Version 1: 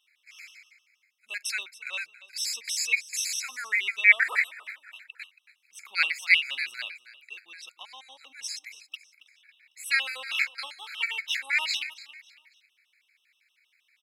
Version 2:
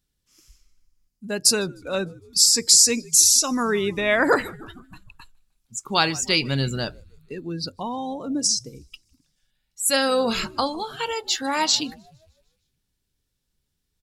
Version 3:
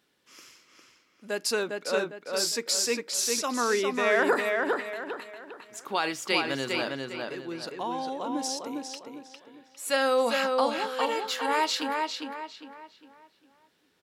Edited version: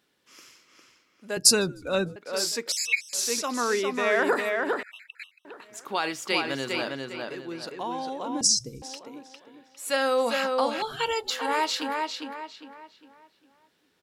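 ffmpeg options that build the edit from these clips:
-filter_complex "[1:a]asplit=3[a][b][c];[0:a]asplit=2[d][e];[2:a]asplit=6[f][g][h][i][j][k];[f]atrim=end=1.372[l];[a]atrim=start=1.368:end=2.162[m];[g]atrim=start=2.158:end=2.722[n];[d]atrim=start=2.718:end=3.132[o];[h]atrim=start=3.128:end=4.832[p];[e]atrim=start=4.828:end=5.452[q];[i]atrim=start=5.448:end=8.412[r];[b]atrim=start=8.408:end=8.822[s];[j]atrim=start=8.818:end=10.822[t];[c]atrim=start=10.818:end=11.302[u];[k]atrim=start=11.298[v];[l][m]acrossfade=d=0.004:c1=hsin:c2=hsin[w];[w][n]acrossfade=d=0.004:c1=hsin:c2=hsin[x];[x][o]acrossfade=d=0.004:c1=hsin:c2=hsin[y];[y][p]acrossfade=d=0.004:c1=hsin:c2=hsin[z];[z][q]acrossfade=d=0.004:c1=hsin:c2=hsin[aa];[aa][r]acrossfade=d=0.004:c1=hsin:c2=hsin[ab];[ab][s]acrossfade=d=0.004:c1=hsin:c2=hsin[ac];[ac][t]acrossfade=d=0.004:c1=hsin:c2=hsin[ad];[ad][u]acrossfade=d=0.004:c1=hsin:c2=hsin[ae];[ae][v]acrossfade=d=0.004:c1=hsin:c2=hsin"

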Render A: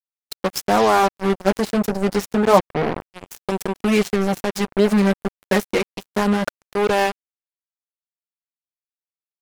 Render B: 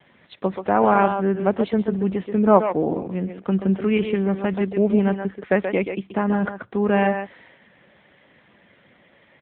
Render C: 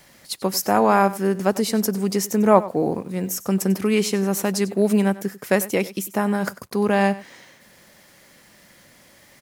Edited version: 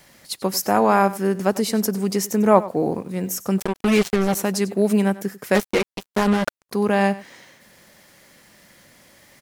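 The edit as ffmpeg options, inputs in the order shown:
-filter_complex "[0:a]asplit=2[a][b];[2:a]asplit=3[c][d][e];[c]atrim=end=3.602[f];[a]atrim=start=3.598:end=4.352[g];[d]atrim=start=4.348:end=5.552[h];[b]atrim=start=5.548:end=6.692[i];[e]atrim=start=6.688[j];[f][g]acrossfade=d=0.004:c1=hsin:c2=hsin[k];[k][h]acrossfade=d=0.004:c1=hsin:c2=hsin[l];[l][i]acrossfade=d=0.004:c1=hsin:c2=hsin[m];[m][j]acrossfade=d=0.004:c1=hsin:c2=hsin"

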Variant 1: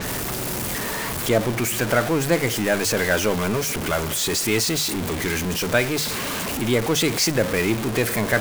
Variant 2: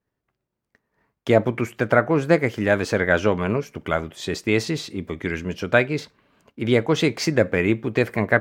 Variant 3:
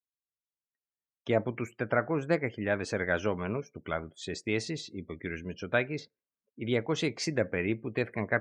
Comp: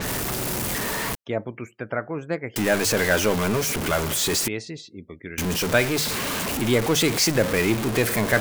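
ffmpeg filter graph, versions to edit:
-filter_complex "[2:a]asplit=2[a][b];[0:a]asplit=3[c][d][e];[c]atrim=end=1.152[f];[a]atrim=start=1.148:end=2.562[g];[d]atrim=start=2.558:end=4.482[h];[b]atrim=start=4.478:end=5.382[i];[e]atrim=start=5.378[j];[f][g]acrossfade=d=0.004:c1=hsin:c2=hsin[k];[k][h]acrossfade=d=0.004:c1=hsin:c2=hsin[l];[l][i]acrossfade=d=0.004:c1=hsin:c2=hsin[m];[m][j]acrossfade=d=0.004:c1=hsin:c2=hsin"

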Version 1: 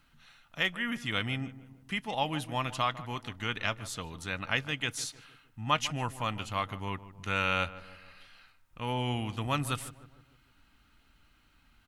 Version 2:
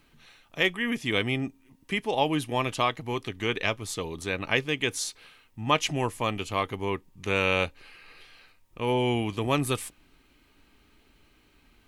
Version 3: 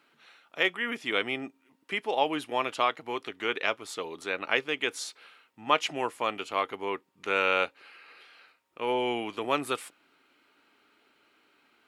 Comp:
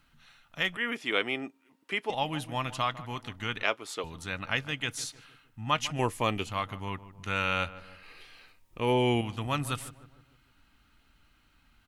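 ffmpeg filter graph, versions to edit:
-filter_complex "[2:a]asplit=2[a][b];[1:a]asplit=2[c][d];[0:a]asplit=5[e][f][g][h][i];[e]atrim=end=0.772[j];[a]atrim=start=0.768:end=2.102[k];[f]atrim=start=2.098:end=3.632[l];[b]atrim=start=3.628:end=4.042[m];[g]atrim=start=4.038:end=5.992[n];[c]atrim=start=5.988:end=6.462[o];[h]atrim=start=6.458:end=8.032[p];[d]atrim=start=8.028:end=9.212[q];[i]atrim=start=9.208[r];[j][k]acrossfade=d=0.004:c1=hsin:c2=hsin[s];[s][l]acrossfade=d=0.004:c1=hsin:c2=hsin[t];[t][m]acrossfade=d=0.004:c1=hsin:c2=hsin[u];[u][n]acrossfade=d=0.004:c1=hsin:c2=hsin[v];[v][o]acrossfade=d=0.004:c1=hsin:c2=hsin[w];[w][p]acrossfade=d=0.004:c1=hsin:c2=hsin[x];[x][q]acrossfade=d=0.004:c1=hsin:c2=hsin[y];[y][r]acrossfade=d=0.004:c1=hsin:c2=hsin"

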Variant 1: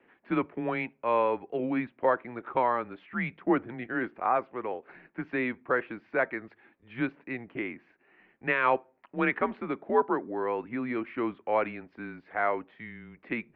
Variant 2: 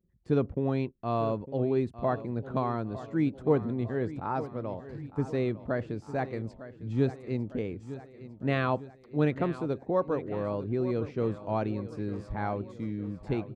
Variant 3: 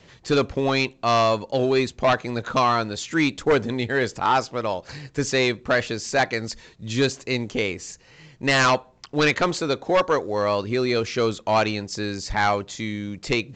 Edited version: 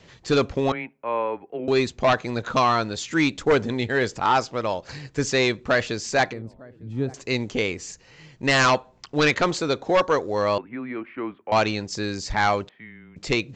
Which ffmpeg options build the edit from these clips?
-filter_complex "[0:a]asplit=3[a][b][c];[2:a]asplit=5[d][e][f][g][h];[d]atrim=end=0.722[i];[a]atrim=start=0.718:end=1.682[j];[e]atrim=start=1.678:end=6.332[k];[1:a]atrim=start=6.328:end=7.142[l];[f]atrim=start=7.138:end=10.582[m];[b]atrim=start=10.578:end=11.522[n];[g]atrim=start=11.518:end=12.692[o];[c]atrim=start=12.688:end=13.162[p];[h]atrim=start=13.158[q];[i][j]acrossfade=d=0.004:c1=hsin:c2=hsin[r];[r][k]acrossfade=d=0.004:c1=hsin:c2=hsin[s];[s][l]acrossfade=d=0.004:c1=hsin:c2=hsin[t];[t][m]acrossfade=d=0.004:c1=hsin:c2=hsin[u];[u][n]acrossfade=d=0.004:c1=hsin:c2=hsin[v];[v][o]acrossfade=d=0.004:c1=hsin:c2=hsin[w];[w][p]acrossfade=d=0.004:c1=hsin:c2=hsin[x];[x][q]acrossfade=d=0.004:c1=hsin:c2=hsin"

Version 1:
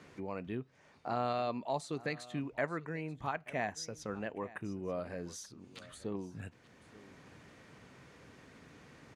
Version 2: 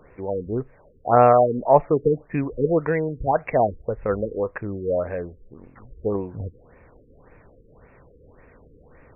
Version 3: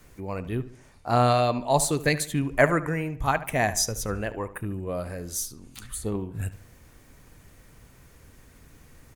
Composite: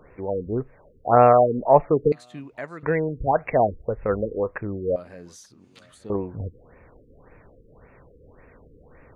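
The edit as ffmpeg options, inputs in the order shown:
-filter_complex "[0:a]asplit=2[a][b];[1:a]asplit=3[c][d][e];[c]atrim=end=2.122[f];[a]atrim=start=2.118:end=2.832[g];[d]atrim=start=2.828:end=4.962[h];[b]atrim=start=4.958:end=6.102[i];[e]atrim=start=6.098[j];[f][g]acrossfade=d=0.004:c1=hsin:c2=hsin[k];[k][h]acrossfade=d=0.004:c1=hsin:c2=hsin[l];[l][i]acrossfade=d=0.004:c1=hsin:c2=hsin[m];[m][j]acrossfade=d=0.004:c1=hsin:c2=hsin"

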